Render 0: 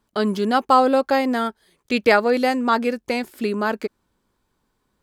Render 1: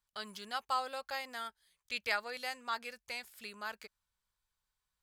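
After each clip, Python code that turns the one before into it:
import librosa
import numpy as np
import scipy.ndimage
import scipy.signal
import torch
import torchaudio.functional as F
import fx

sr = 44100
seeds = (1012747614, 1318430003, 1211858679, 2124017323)

y = fx.tone_stack(x, sr, knobs='10-0-10')
y = y * 10.0 ** (-9.0 / 20.0)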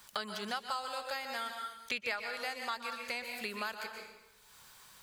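y = fx.rev_plate(x, sr, seeds[0], rt60_s=0.63, hf_ratio=0.9, predelay_ms=110, drr_db=5.5)
y = fx.band_squash(y, sr, depth_pct=100)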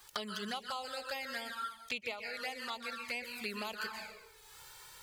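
y = fx.env_flanger(x, sr, rest_ms=2.7, full_db=-33.0)
y = fx.rider(y, sr, range_db=10, speed_s=0.5)
y = y * 10.0 ** (2.0 / 20.0)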